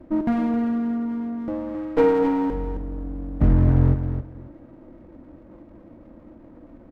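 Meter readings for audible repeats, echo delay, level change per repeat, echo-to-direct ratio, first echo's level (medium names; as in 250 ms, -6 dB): 2, 267 ms, -15.0 dB, -8.5 dB, -8.5 dB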